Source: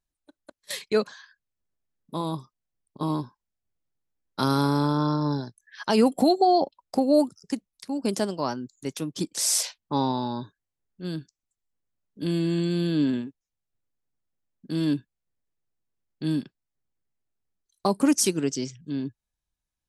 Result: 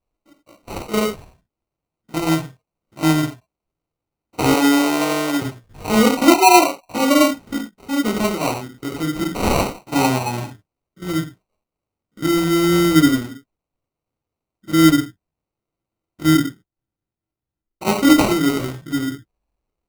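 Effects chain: stepped spectrum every 50 ms; 16.35–17.88 steep low-pass 850 Hz 96 dB/oct; non-linear reverb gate 0.14 s falling, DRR -3 dB; sample-and-hold 26×; 4.54–5.42 HPF 250 Hz 24 dB/oct; gain +4 dB

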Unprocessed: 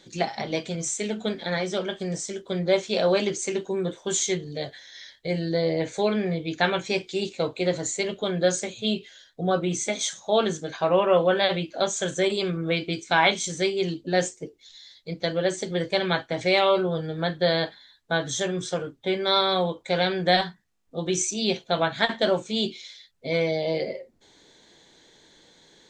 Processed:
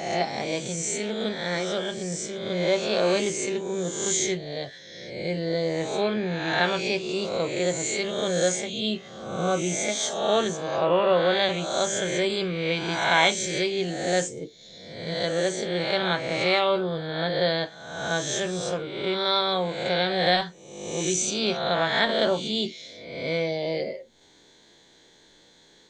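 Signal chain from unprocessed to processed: spectral swells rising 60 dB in 1.04 s; gain -3 dB

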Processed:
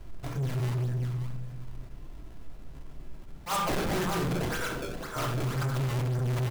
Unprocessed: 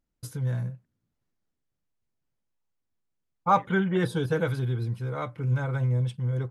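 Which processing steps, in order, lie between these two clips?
dynamic EQ 1400 Hz, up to +7 dB, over -41 dBFS, Q 0.72; tremolo 0.64 Hz, depth 52%; feedback echo 0.195 s, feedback 53%, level -3 dB; in parallel at 0 dB: compressor, threshold -32 dBFS, peak gain reduction 17.5 dB; 4.32–5.16 on the sum: HPF 820 Hz 12 dB/oct; added noise brown -45 dBFS; decimation with a swept rate 26×, swing 160% 1.9 Hz; on a send at -2 dB: reverb RT60 0.55 s, pre-delay 3 ms; on the sum: soft clip -25.5 dBFS, distortion -5 dB; attack slew limiter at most 250 dB/s; gain -1 dB

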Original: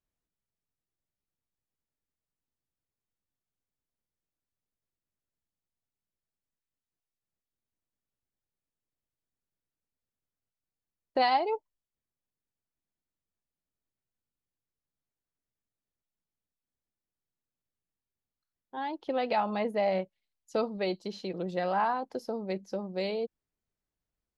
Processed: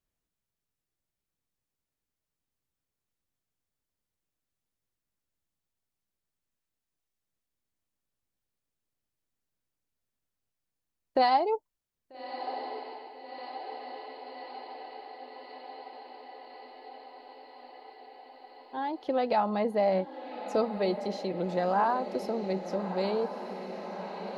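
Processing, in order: diffused feedback echo 1.273 s, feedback 74%, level -11 dB; dynamic EQ 2600 Hz, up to -7 dB, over -50 dBFS, Q 1.1; gain +2.5 dB

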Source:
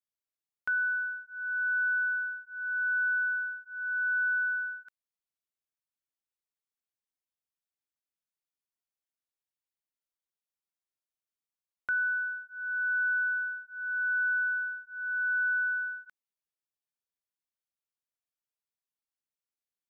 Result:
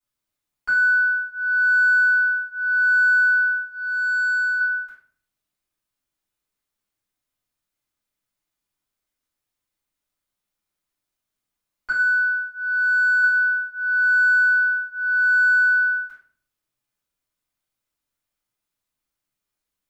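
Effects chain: soft clip -26.5 dBFS, distortion -20 dB; 3.64–4.6 comb 3.1 ms, depth 68%; 11.91–13.23 HPF 1200 Hz 12 dB/oct; shoebox room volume 51 m³, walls mixed, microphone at 3.2 m; gain -2.5 dB

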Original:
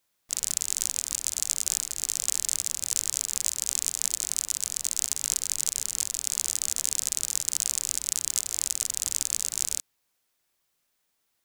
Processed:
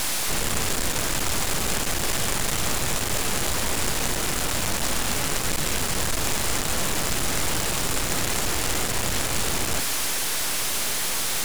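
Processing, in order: delta modulation 64 kbps, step -14 dBFS; half-wave rectifier

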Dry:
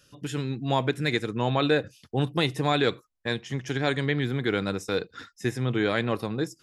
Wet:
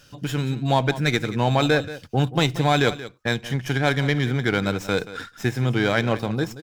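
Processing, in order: comb 1.3 ms, depth 30%; in parallel at -2 dB: compressor, threshold -36 dBFS, peak gain reduction 16.5 dB; on the sum: echo 0.18 s -15 dB; running maximum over 3 samples; gain +3 dB

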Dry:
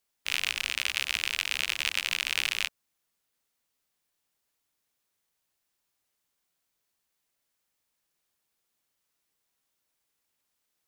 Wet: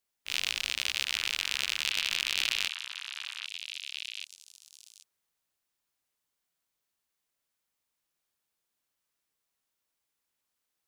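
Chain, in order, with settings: dynamic EQ 4000 Hz, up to +8 dB, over -44 dBFS, Q 0.9; delay with a stepping band-pass 0.784 s, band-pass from 1200 Hz, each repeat 1.4 oct, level -5 dB; transient shaper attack -7 dB, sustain +1 dB; gain -4 dB

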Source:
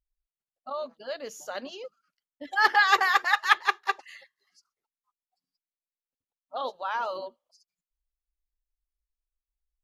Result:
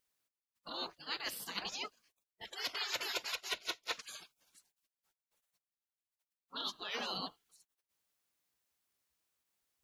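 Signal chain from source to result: spectral gate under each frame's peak -20 dB weak; reverse; compressor 6:1, threshold -49 dBFS, peak gain reduction 19.5 dB; reverse; gain +12.5 dB

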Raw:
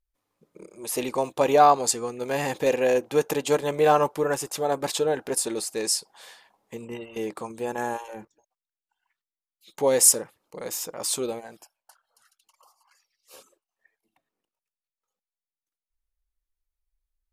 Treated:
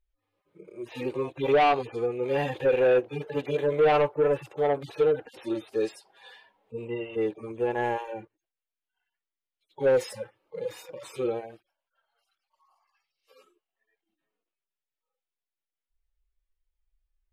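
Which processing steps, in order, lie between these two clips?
median-filter separation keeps harmonic; soft clip -21 dBFS, distortion -8 dB; EQ curve 110 Hz 0 dB, 240 Hz -8 dB, 370 Hz +2 dB, 1000 Hz -3 dB, 1900 Hz 0 dB, 3100 Hz +1 dB, 6700 Hz -17 dB, 10000 Hz -15 dB; gain +4.5 dB

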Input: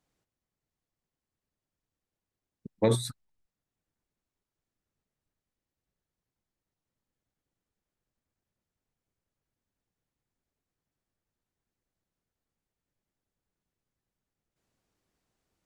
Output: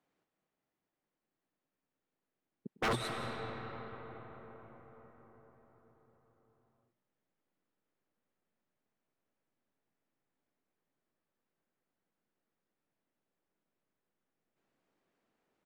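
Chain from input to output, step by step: three-band isolator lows -18 dB, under 170 Hz, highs -13 dB, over 3200 Hz; wavefolder -27 dBFS; echo 0.103 s -19 dB; on a send at -3 dB: reverb RT60 5.5 s, pre-delay 0.12 s; on the sum: gain +1 dB

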